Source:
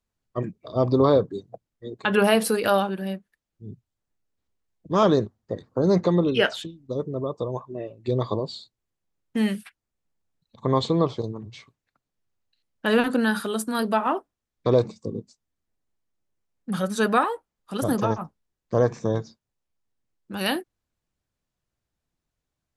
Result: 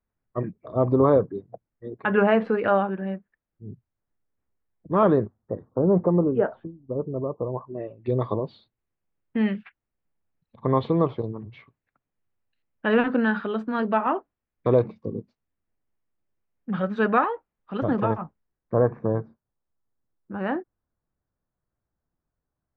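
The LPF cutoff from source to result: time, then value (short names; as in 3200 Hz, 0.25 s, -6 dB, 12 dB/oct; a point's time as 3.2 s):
LPF 24 dB/oct
5.17 s 2100 Hz
5.78 s 1100 Hz
7.44 s 1100 Hz
7.93 s 2600 Hz
18.24 s 2600 Hz
18.83 s 1600 Hz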